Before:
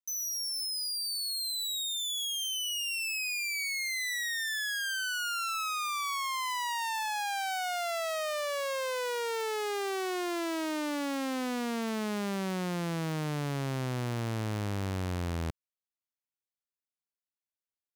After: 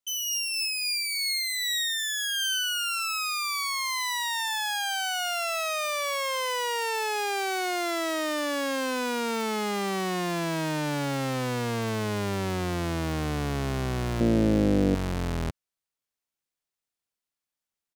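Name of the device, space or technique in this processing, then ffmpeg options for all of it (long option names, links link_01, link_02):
octave pedal: -filter_complex "[0:a]asplit=2[link_01][link_02];[link_02]asetrate=22050,aresample=44100,atempo=2,volume=-3dB[link_03];[link_01][link_03]amix=inputs=2:normalize=0,asettb=1/sr,asplit=3[link_04][link_05][link_06];[link_04]atrim=end=14.204[link_07];[link_05]atrim=start=14.2:end=14.95,asetpts=PTS-STARTPTS,afade=type=in:duration=0.004:curve=qsin,afade=type=out:start_time=0.746:duration=0.004:curve=qsin,equalizer=frequency=250:width_type=o:width=1:gain=12,equalizer=frequency=500:width_type=o:width=1:gain=10,equalizer=frequency=1000:width_type=o:width=1:gain=-7,equalizer=frequency=16000:width_type=o:width=1:gain=-4[link_08];[link_06]atrim=start=14.946[link_09];[link_07][link_08]acrossfade=duration=0.004:curve1=hsin:curve2=qsin[link_10];[link_10][link_09]acrossfade=duration=0.004:curve1=qsin:curve2=hsin,volume=3.5dB"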